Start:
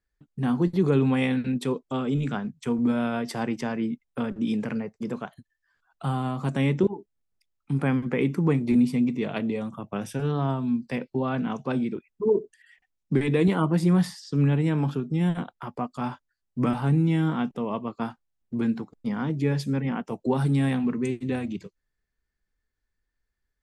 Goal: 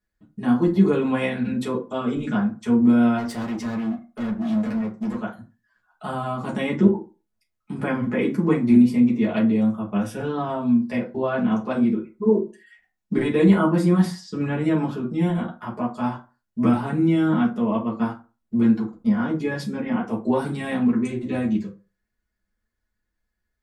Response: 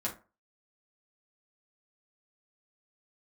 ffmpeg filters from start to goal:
-filter_complex "[0:a]asplit=3[a][b][c];[a]afade=t=out:st=3.17:d=0.02[d];[b]asoftclip=type=hard:threshold=-31.5dB,afade=t=in:st=3.17:d=0.02,afade=t=out:st=5.18:d=0.02[e];[c]afade=t=in:st=5.18:d=0.02[f];[d][e][f]amix=inputs=3:normalize=0[g];[1:a]atrim=start_sample=2205,afade=t=out:st=0.35:d=0.01,atrim=end_sample=15876[h];[g][h]afir=irnorm=-1:irlink=0"

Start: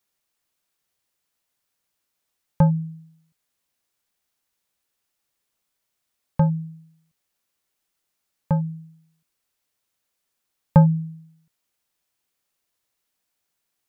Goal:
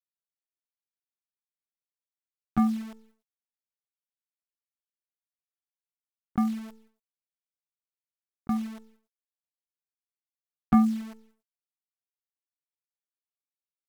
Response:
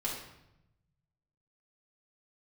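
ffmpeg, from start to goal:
-af "acrusher=bits=7:dc=4:mix=0:aa=0.000001,asetrate=60591,aresample=44100,atempo=0.727827,agate=range=-33dB:threshold=-50dB:ratio=3:detection=peak,volume=-7dB"

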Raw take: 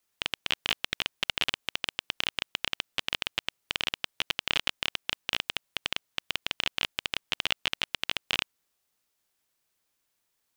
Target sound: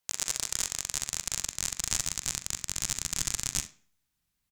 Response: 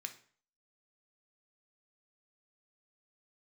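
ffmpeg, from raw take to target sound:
-filter_complex "[0:a]aecho=1:1:151:0.133,asetrate=103194,aresample=44100,asplit=2[a][b];[b]highshelf=f=6.1k:g=-9[c];[1:a]atrim=start_sample=2205,adelay=42[d];[c][d]afir=irnorm=-1:irlink=0,volume=-5dB[e];[a][e]amix=inputs=2:normalize=0,asubboost=boost=8.5:cutoff=170"

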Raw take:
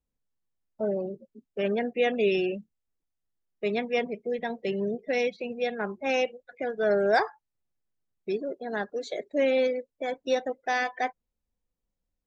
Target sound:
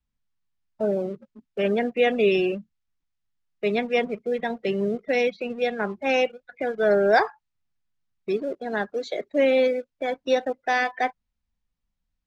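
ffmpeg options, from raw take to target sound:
-filter_complex "[0:a]lowpass=5.3k,acrossover=split=280|710|1700[a][b][c][d];[b]aeval=exprs='sgn(val(0))*max(abs(val(0))-0.00178,0)':c=same[e];[a][e][c][d]amix=inputs=4:normalize=0,volume=4.5dB"

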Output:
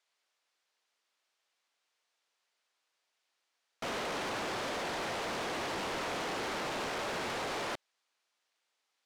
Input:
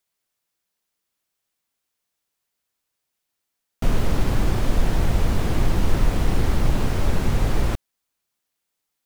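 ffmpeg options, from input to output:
-af "highpass=510,lowpass=5.3k,asoftclip=type=tanh:threshold=-38dB,volume=4dB"

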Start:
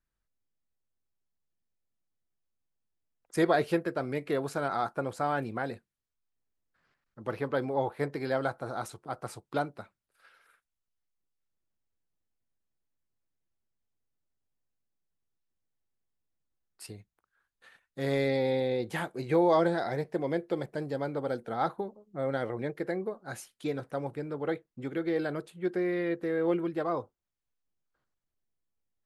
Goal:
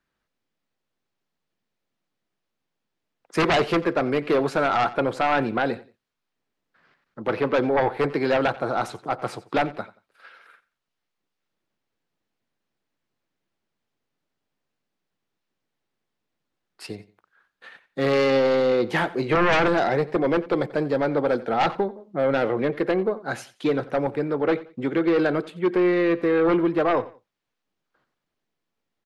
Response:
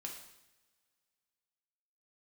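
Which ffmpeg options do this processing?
-filter_complex "[0:a]acrossover=split=140|5000[a][b][c];[b]aeval=exprs='0.224*sin(PI/2*3.55*val(0)/0.224)':c=same[d];[a][d][c]amix=inputs=3:normalize=0,aecho=1:1:89|178:0.119|0.0321,volume=-2.5dB"

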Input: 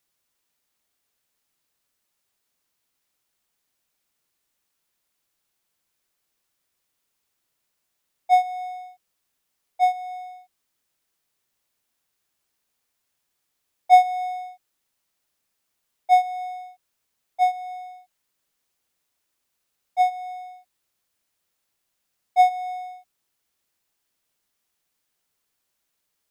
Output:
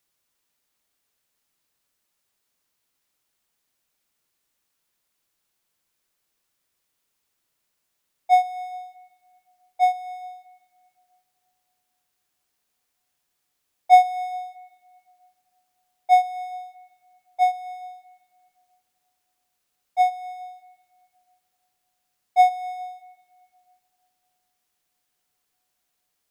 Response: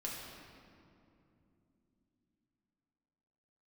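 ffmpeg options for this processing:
-filter_complex "[0:a]asplit=2[a][b];[1:a]atrim=start_sample=2205,asetrate=39690,aresample=44100[c];[b][c]afir=irnorm=-1:irlink=0,volume=-19.5dB[d];[a][d]amix=inputs=2:normalize=0"

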